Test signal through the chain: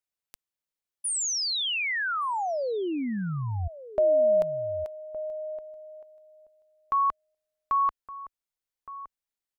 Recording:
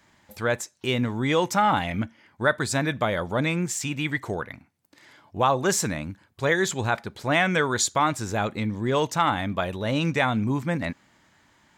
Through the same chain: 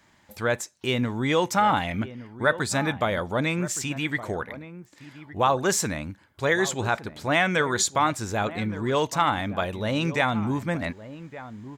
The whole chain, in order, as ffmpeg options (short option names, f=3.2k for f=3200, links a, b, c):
-filter_complex "[0:a]asubboost=boost=3:cutoff=59,asplit=2[a][b];[b]adelay=1166,volume=-14dB,highshelf=f=4k:g=-26.2[c];[a][c]amix=inputs=2:normalize=0"